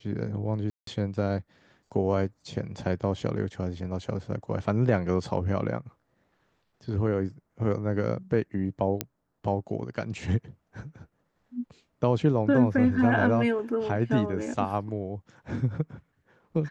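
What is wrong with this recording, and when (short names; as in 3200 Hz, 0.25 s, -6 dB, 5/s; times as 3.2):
0.7–0.87 gap 0.173 s
9.01 pop -9 dBFS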